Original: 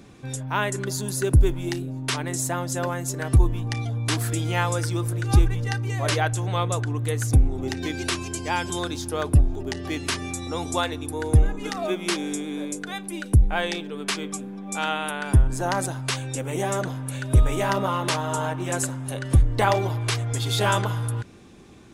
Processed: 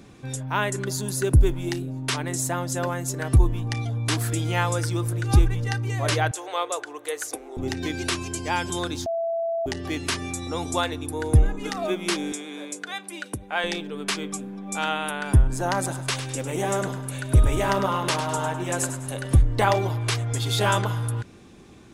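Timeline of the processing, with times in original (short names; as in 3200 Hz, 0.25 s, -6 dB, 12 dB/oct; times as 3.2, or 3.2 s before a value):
6.31–7.57 inverse Chebyshev high-pass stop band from 190 Hz
9.06–9.66 bleep 667 Hz -23 dBFS
12.32–13.64 weighting filter A
15.76–19.31 feedback echo 0.102 s, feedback 36%, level -10 dB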